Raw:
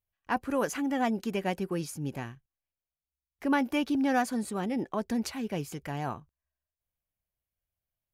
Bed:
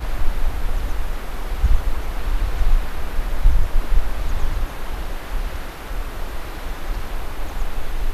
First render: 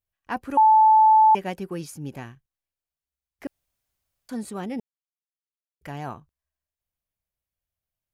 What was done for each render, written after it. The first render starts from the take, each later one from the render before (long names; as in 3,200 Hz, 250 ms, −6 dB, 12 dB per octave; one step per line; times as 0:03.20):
0:00.57–0:01.35: beep over 872 Hz −11.5 dBFS
0:03.47–0:04.29: fill with room tone
0:04.80–0:05.81: silence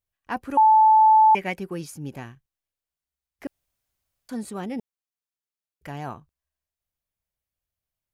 0:01.01–0:01.59: parametric band 2,200 Hz +13 dB 0.36 octaves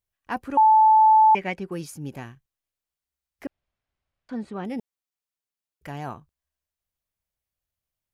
0:00.48–0:01.72: high-frequency loss of the air 63 metres
0:03.46–0:04.65: low-pass filter 2,900 Hz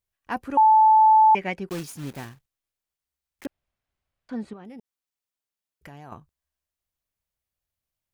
0:01.69–0:03.46: one scale factor per block 3 bits
0:04.53–0:06.12: downward compressor 5 to 1, threshold −40 dBFS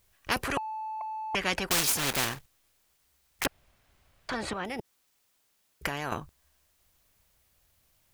downward compressor 4 to 1, threshold −18 dBFS, peak gain reduction 4.5 dB
every bin compressed towards the loudest bin 4 to 1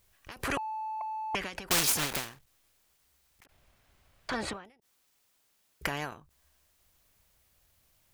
every ending faded ahead of time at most 130 dB per second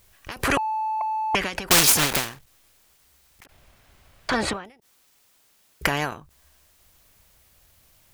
level +10 dB